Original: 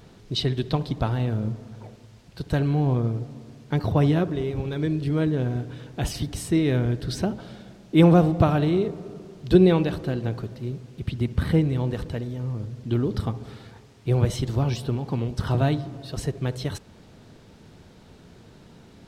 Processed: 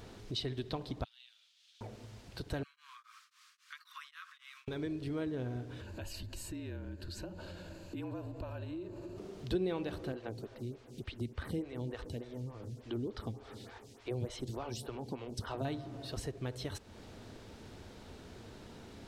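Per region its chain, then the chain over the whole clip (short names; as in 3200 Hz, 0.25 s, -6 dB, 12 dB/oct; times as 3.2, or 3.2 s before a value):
1.04–1.81 high shelf 9100 Hz -10 dB + upward compressor, threshold -29 dBFS + ladder high-pass 2900 Hz, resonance 50%
2.63–4.68 steep high-pass 1100 Hz 96 dB/oct + compressor 2:1, threshold -50 dBFS + beating tremolo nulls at 3.7 Hz
5.81–9.18 ripple EQ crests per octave 1.4, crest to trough 10 dB + compressor 2.5:1, threshold -40 dBFS + frequency shift -41 Hz
10.12–15.65 bell 7500 Hz +4.5 dB 2.6 oct + photocell phaser 3.4 Hz
whole clip: bell 160 Hz -10 dB 0.51 oct; compressor 2:1, threshold -44 dBFS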